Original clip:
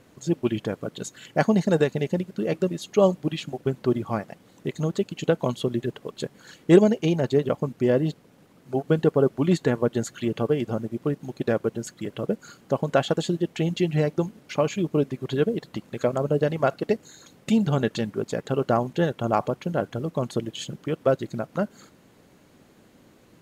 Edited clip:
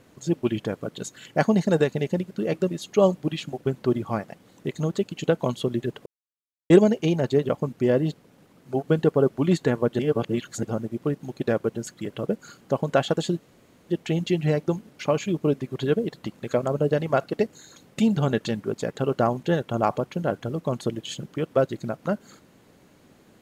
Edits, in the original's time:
6.06–6.7 mute
9.99–10.63 reverse
13.39 insert room tone 0.50 s

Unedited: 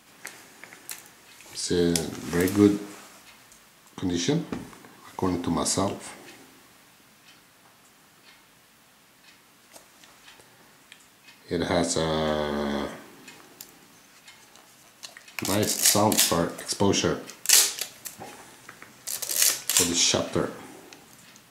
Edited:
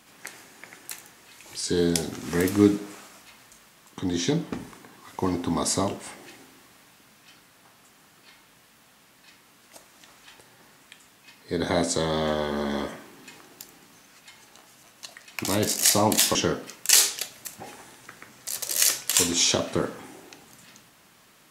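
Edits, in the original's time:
16.35–16.95 cut

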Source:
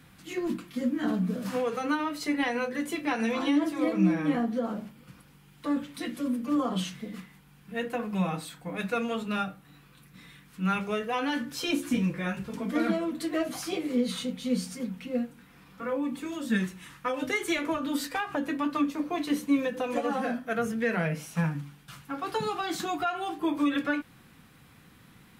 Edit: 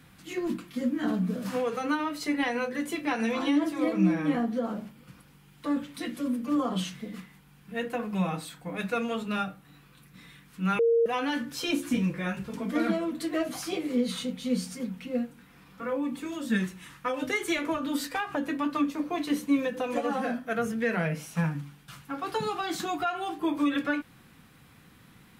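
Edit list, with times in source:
10.79–11.06 bleep 463 Hz -19 dBFS

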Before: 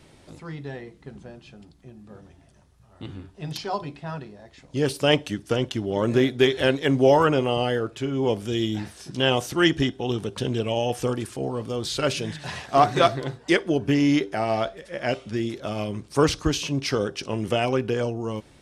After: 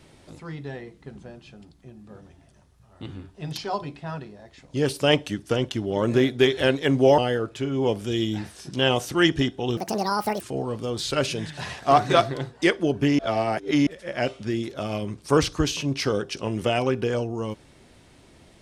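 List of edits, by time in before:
7.18–7.59 cut
10.18–11.27 speed 171%
14.05–14.73 reverse

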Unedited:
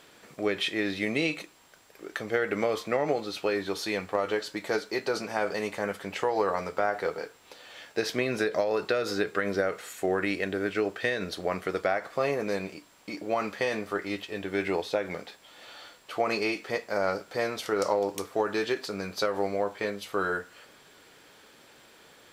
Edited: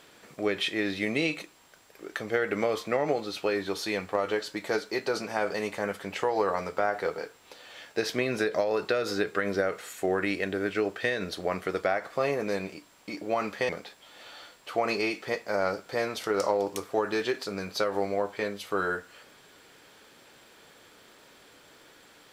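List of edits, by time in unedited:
13.69–15.11 cut

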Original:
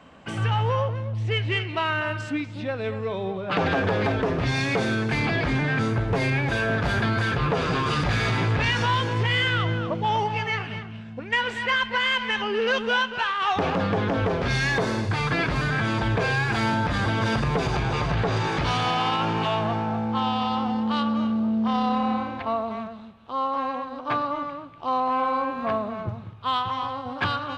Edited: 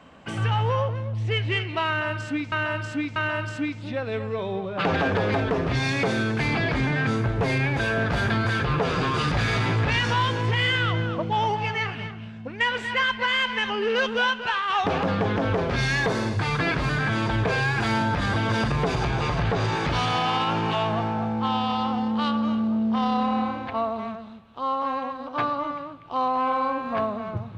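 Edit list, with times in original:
1.88–2.52 loop, 3 plays

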